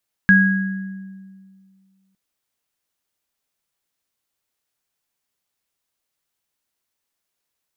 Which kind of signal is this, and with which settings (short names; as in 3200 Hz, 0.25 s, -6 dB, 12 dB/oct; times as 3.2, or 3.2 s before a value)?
sine partials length 1.86 s, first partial 192 Hz, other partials 1650 Hz, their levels 2.5 dB, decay 2.10 s, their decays 1.04 s, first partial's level -11 dB